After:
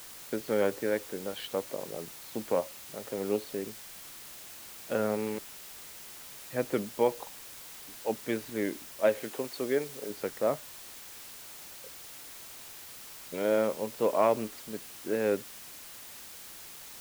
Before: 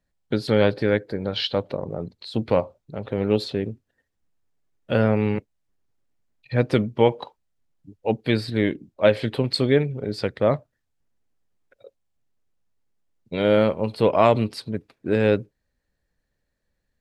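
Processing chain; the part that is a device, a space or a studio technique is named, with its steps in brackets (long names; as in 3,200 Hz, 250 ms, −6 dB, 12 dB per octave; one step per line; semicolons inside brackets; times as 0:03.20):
wax cylinder (band-pass filter 260–2,100 Hz; tape wow and flutter; white noise bed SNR 13 dB)
0:09.23–0:10.10: bass and treble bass −7 dB, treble +1 dB
level −7.5 dB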